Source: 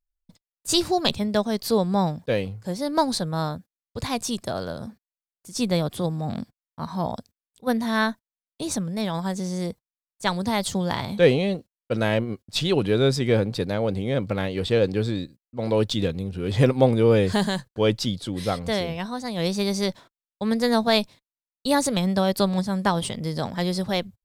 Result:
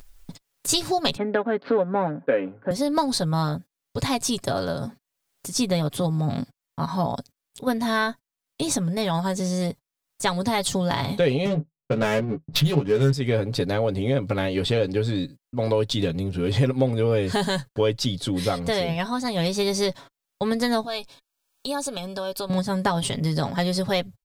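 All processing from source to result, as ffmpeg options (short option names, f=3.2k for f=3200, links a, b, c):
-filter_complex "[0:a]asettb=1/sr,asplit=3[a][b][c];[a]atrim=end=1.174[d];[b]atrim=start=1.17:end=2.71,asetpts=PTS-STARTPTS,afade=t=in:d=0.004:c=qsin,afade=t=out:st=1.536:d=0.004:c=qsin,asoftclip=type=hard:threshold=-12.5dB,adynamicsmooth=sensitivity=4.5:basefreq=1.7k,highpass=f=190:w=0.5412,highpass=f=190:w=1.3066,equalizer=f=280:t=q:w=4:g=6,equalizer=f=530:t=q:w=4:g=5,equalizer=f=1.5k:t=q:w=4:g=9,lowpass=f=2.6k:w=0.5412,lowpass=f=2.6k:w=1.3066[e];[c]atrim=start=2.706[f];[d][e]acrossfade=d=0.004:c1=hsin:c2=qsin[g];[g][f]acrossfade=d=0.004:c1=qsin:c2=hsin,asettb=1/sr,asplit=3[h][i][j];[h]atrim=end=11.454[k];[i]atrim=start=11.45:end=13.13,asetpts=PTS-STARTPTS,afade=t=in:d=0.004:c=qsin,afade=t=out:st=1.676:d=0.004:c=qsin,equalizer=f=160:t=o:w=0.38:g=11.5,adynamicsmooth=sensitivity=3.5:basefreq=550,asplit=2[l][m];[m]adelay=14,volume=-4dB[n];[l][n]amix=inputs=2:normalize=0,atrim=end_sample=74088[o];[j]atrim=start=13.126[p];[k][o]acrossfade=d=0.004:c1=hsin:c2=qsin[q];[q][p]acrossfade=d=0.004:c1=qsin:c2=hsin,asettb=1/sr,asplit=3[r][s][t];[r]atrim=end=20.854[u];[s]atrim=start=20.85:end=22.5,asetpts=PTS-STARTPTS,afade=t=in:d=0.004:c=qsin,afade=t=out:st=1.646:d=0.004:c=qsin,equalizer=f=120:w=0.52:g=-10.5,acompressor=threshold=-40dB:ratio=2:attack=3.2:release=140:knee=1:detection=peak,asuperstop=centerf=2000:order=20:qfactor=5[v];[t]atrim=start=22.496[w];[u][v]acrossfade=d=0.004:c1=hsin:c2=qsin[x];[x][w]acrossfade=d=0.004:c1=qsin:c2=hsin,acompressor=mode=upward:threshold=-34dB:ratio=2.5,aecho=1:1:7.2:0.54,acompressor=threshold=-25dB:ratio=3,volume=4.5dB"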